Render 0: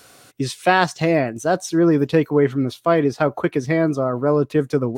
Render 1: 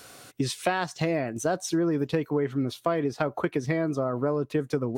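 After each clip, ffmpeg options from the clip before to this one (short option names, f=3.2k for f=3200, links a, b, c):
-af "acompressor=threshold=-23dB:ratio=6"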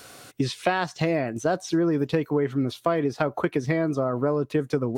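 -filter_complex "[0:a]acrossover=split=5400[a][b];[b]acompressor=threshold=-49dB:ratio=4:attack=1:release=60[c];[a][c]amix=inputs=2:normalize=0,volume=2.5dB"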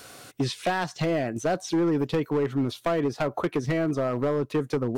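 -af "asoftclip=type=hard:threshold=-19.5dB"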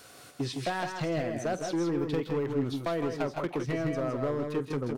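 -af "aecho=1:1:48|134|160|174:0.133|0.141|0.501|0.282,volume=-6dB"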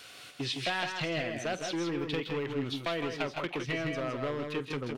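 -af "equalizer=f=2.9k:t=o:w=1.6:g=14,volume=-4.5dB"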